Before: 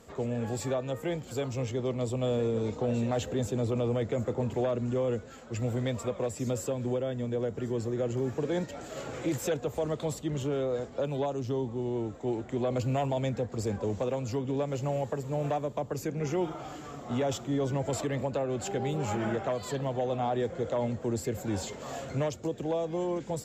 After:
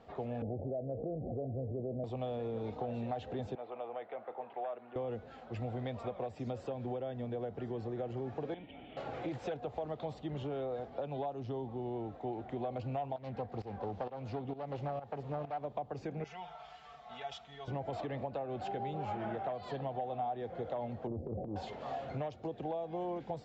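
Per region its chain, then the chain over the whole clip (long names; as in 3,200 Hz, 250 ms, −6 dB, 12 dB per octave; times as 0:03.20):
0:00.42–0:02.04: Butterworth low-pass 680 Hz 72 dB per octave + envelope flattener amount 70%
0:03.55–0:04.96: band-pass filter 740–4,500 Hz + high-frequency loss of the air 360 metres
0:08.54–0:08.97: formant resonators in series i + every bin compressed towards the loudest bin 2 to 1
0:13.16–0:15.65: phase distortion by the signal itself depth 0.22 ms + fake sidechain pumping 131 BPM, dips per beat 1, −15 dB, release 369 ms
0:16.24–0:17.68: high-pass filter 57 Hz + guitar amp tone stack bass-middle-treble 10-0-10 + comb filter 4.5 ms, depth 87%
0:21.07–0:21.56: inverse Chebyshev low-pass filter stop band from 1,100 Hz + transient designer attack −10 dB, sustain +11 dB
whole clip: parametric band 750 Hz +12 dB 0.41 octaves; downward compressor 4 to 1, threshold −30 dBFS; low-pass filter 4,200 Hz 24 dB per octave; level −5.5 dB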